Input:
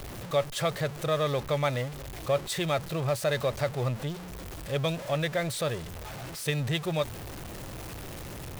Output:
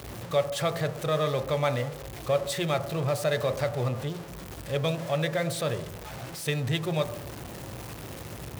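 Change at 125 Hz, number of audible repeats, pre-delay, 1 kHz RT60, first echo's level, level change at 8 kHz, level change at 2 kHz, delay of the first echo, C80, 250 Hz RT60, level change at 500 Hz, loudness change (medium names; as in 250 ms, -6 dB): +1.0 dB, no echo, 6 ms, 0.80 s, no echo, 0.0 dB, 0.0 dB, no echo, 14.5 dB, 0.80 s, +1.5 dB, +1.0 dB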